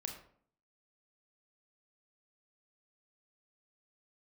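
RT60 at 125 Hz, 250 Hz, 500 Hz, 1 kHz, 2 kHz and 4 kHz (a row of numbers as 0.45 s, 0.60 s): 0.65 s, 0.70 s, 0.60 s, 0.55 s, 0.45 s, 0.35 s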